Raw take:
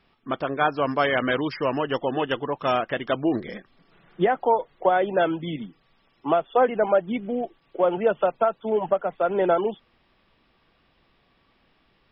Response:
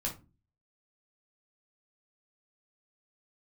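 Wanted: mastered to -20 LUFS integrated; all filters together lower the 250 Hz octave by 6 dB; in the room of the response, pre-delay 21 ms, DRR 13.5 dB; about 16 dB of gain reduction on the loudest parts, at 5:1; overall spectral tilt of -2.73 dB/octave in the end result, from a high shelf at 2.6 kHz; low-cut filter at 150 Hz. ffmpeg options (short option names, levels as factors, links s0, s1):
-filter_complex "[0:a]highpass=150,equalizer=f=250:t=o:g=-8,highshelf=f=2600:g=4,acompressor=threshold=0.0178:ratio=5,asplit=2[s0][s1];[1:a]atrim=start_sample=2205,adelay=21[s2];[s1][s2]afir=irnorm=-1:irlink=0,volume=0.158[s3];[s0][s3]amix=inputs=2:normalize=0,volume=8.41"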